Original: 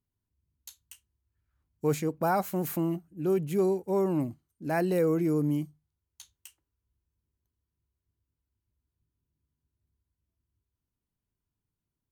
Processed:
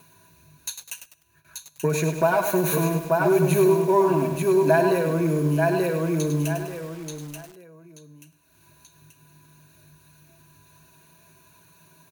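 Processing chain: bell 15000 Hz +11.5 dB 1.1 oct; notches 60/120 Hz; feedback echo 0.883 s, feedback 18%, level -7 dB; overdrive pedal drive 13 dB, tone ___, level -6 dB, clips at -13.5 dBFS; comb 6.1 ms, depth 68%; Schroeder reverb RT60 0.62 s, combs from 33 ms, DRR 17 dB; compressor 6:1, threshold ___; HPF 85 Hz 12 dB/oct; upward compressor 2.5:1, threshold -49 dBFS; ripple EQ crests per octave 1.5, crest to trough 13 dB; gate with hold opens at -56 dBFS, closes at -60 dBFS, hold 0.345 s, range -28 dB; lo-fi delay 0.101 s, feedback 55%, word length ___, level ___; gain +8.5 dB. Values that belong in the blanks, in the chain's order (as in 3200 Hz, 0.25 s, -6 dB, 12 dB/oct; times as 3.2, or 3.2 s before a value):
2200 Hz, -28 dBFS, 8-bit, -7.5 dB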